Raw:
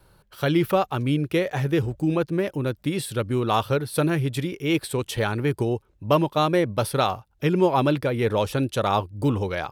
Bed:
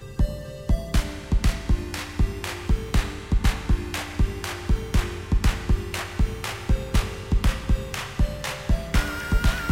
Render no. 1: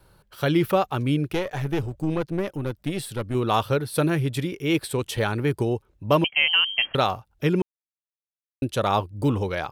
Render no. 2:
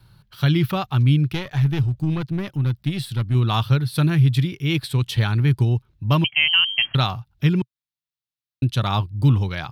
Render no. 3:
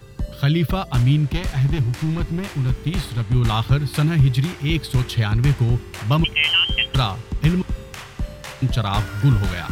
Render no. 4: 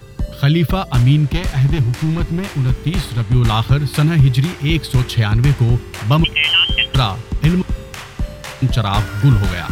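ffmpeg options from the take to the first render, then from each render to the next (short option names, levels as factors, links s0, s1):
-filter_complex "[0:a]asettb=1/sr,asplit=3[s0][s1][s2];[s0]atrim=end=1.334[s3];[s1]atrim=start=1.33:end=3.35,asetpts=PTS-STARTPTS,afade=t=in:d=0.004:c=qsin,afade=t=out:st=2.016:d=0.004:c=qsin,aeval=exprs='(tanh(7.08*val(0)+0.6)-tanh(0.6))/7.08':c=same[s4];[s2]atrim=start=3.346[s5];[s3][s4]acrossfade=d=0.004:c1=hsin:c2=qsin[s6];[s6][s5]acrossfade=d=0.004:c1=qsin:c2=hsin,asettb=1/sr,asplit=3[s7][s8][s9];[s7]atrim=end=6.244[s10];[s8]atrim=start=6.24:end=6.95,asetpts=PTS-STARTPTS,afade=t=in:d=0.004:c=qsin,afade=t=out:st=0.706:d=0.004:c=qsin,lowpass=f=2800:t=q:w=0.5098,lowpass=f=2800:t=q:w=0.6013,lowpass=f=2800:t=q:w=0.9,lowpass=f=2800:t=q:w=2.563,afreqshift=-3300[s11];[s9]atrim=start=6.946[s12];[s10][s11]acrossfade=d=0.004:c1=hsin:c2=qsin[s13];[s13][s12]acrossfade=d=0.004:c1=qsin:c2=hsin,asplit=3[s14][s15][s16];[s14]atrim=end=7.62,asetpts=PTS-STARTPTS,afade=t=out:st=7.616:d=0.004:c=hsin[s17];[s15]atrim=start=7.62:end=8.62,asetpts=PTS-STARTPTS,volume=0[s18];[s16]atrim=start=8.62,asetpts=PTS-STARTPTS,afade=t=in:d=0.004:c=hsin[s19];[s17][s18][s19]concat=n=3:v=0:a=1"
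-af "equalizer=f=125:t=o:w=1:g=12,equalizer=f=500:t=o:w=1:g=-11,equalizer=f=4000:t=o:w=1:g=7,equalizer=f=8000:t=o:w=1:g=-6"
-filter_complex "[1:a]volume=0.596[s0];[0:a][s0]amix=inputs=2:normalize=0"
-af "volume=1.68,alimiter=limit=0.708:level=0:latency=1"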